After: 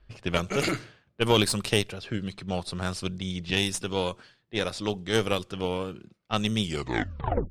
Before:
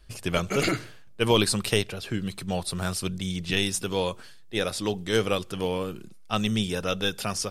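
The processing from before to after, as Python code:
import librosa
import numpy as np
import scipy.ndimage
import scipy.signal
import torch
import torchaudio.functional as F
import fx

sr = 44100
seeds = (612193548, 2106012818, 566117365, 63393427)

y = fx.tape_stop_end(x, sr, length_s=0.89)
y = fx.tube_stage(y, sr, drive_db=12.0, bias=0.8)
y = fx.env_lowpass(y, sr, base_hz=2600.0, full_db=-24.0)
y = y * 10.0 ** (2.5 / 20.0)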